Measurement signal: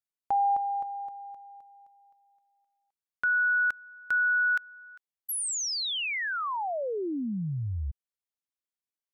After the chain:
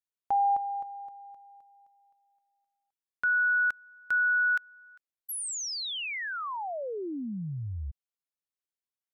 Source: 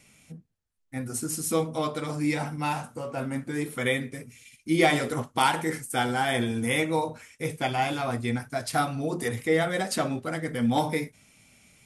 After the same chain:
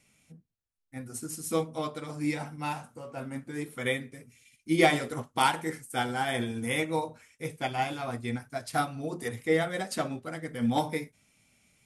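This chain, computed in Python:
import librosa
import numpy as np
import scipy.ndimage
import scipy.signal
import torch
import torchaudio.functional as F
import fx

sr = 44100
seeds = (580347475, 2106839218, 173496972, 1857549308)

y = fx.upward_expand(x, sr, threshold_db=-34.0, expansion=1.5)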